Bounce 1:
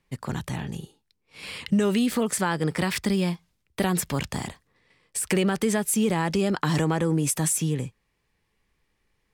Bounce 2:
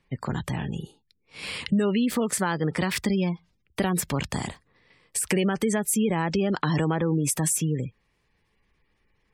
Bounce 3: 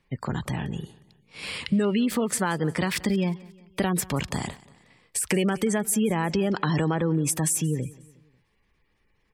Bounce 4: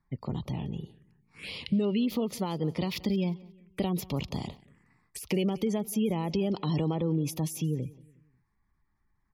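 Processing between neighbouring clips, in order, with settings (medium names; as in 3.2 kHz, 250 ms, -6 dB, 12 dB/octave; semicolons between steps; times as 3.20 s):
spectral gate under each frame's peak -30 dB strong; in parallel at +1.5 dB: compression, threshold -30 dBFS, peak gain reduction 11.5 dB; on the sum: trim -3.5 dB
feedback delay 180 ms, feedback 47%, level -21.5 dB
touch-sensitive phaser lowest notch 480 Hz, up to 1.6 kHz, full sweep at -30.5 dBFS; tape noise reduction on one side only decoder only; trim -3.5 dB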